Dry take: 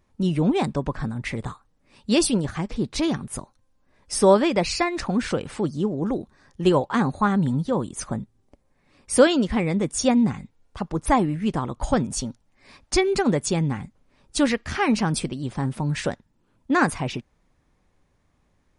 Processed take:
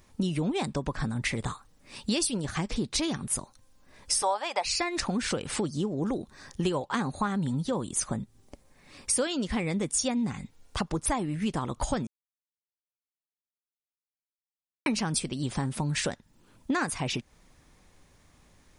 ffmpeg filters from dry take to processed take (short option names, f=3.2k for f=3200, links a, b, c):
-filter_complex "[0:a]asettb=1/sr,asplit=3[a][b][c];[a]atrim=end=4.224[d];[b]atrim=start=4.22:end=4.65,asetpts=PTS-STARTPTS,afade=t=in:d=0.004:c=qsin,afade=t=out:st=0.426:d=0.004:c=qsin,highpass=f=800:t=q:w=4.4[e];[c]atrim=start=4.646[f];[d][e]acrossfade=d=0.004:c1=hsin:c2=qsin[g];[g][f]acrossfade=d=0.004:c1=qsin:c2=hsin,asplit=3[h][i][j];[h]atrim=end=12.07,asetpts=PTS-STARTPTS,afade=t=out:st=12.066:d=0.004:c=hsin[k];[i]atrim=start=12.07:end=14.86,asetpts=PTS-STARTPTS,volume=0[l];[j]atrim=start=14.86,asetpts=PTS-STARTPTS,afade=t=in:d=0.004:c=hsin[m];[k][l][m]concat=n=3:v=0:a=1,highshelf=f=2.8k:g=10,acompressor=threshold=-33dB:ratio=5,volume=5.5dB"